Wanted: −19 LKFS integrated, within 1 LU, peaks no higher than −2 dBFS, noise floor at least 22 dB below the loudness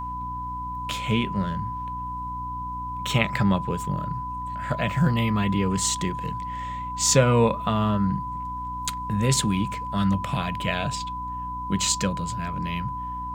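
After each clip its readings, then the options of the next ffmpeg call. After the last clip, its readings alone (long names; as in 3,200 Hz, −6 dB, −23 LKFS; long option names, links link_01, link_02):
mains hum 60 Hz; hum harmonics up to 300 Hz; level of the hum −36 dBFS; interfering tone 1,000 Hz; level of the tone −30 dBFS; integrated loudness −25.5 LKFS; sample peak −3.5 dBFS; target loudness −19.0 LKFS
→ -af "bandreject=frequency=60:width_type=h:width=6,bandreject=frequency=120:width_type=h:width=6,bandreject=frequency=180:width_type=h:width=6,bandreject=frequency=240:width_type=h:width=6,bandreject=frequency=300:width_type=h:width=6"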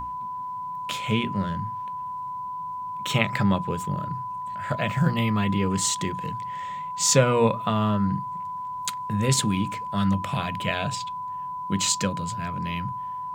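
mains hum none found; interfering tone 1,000 Hz; level of the tone −30 dBFS
→ -af "bandreject=frequency=1000:width=30"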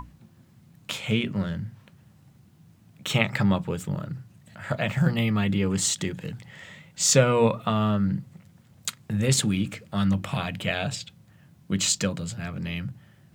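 interfering tone none found; integrated loudness −26.0 LKFS; sample peak −4.5 dBFS; target loudness −19.0 LKFS
→ -af "volume=7dB,alimiter=limit=-2dB:level=0:latency=1"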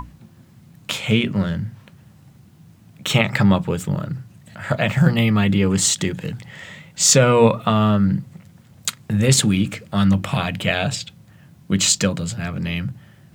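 integrated loudness −19.0 LKFS; sample peak −2.0 dBFS; background noise floor −50 dBFS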